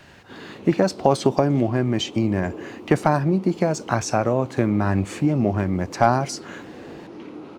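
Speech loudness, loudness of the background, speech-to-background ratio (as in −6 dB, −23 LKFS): −22.0 LKFS, −40.0 LKFS, 18.0 dB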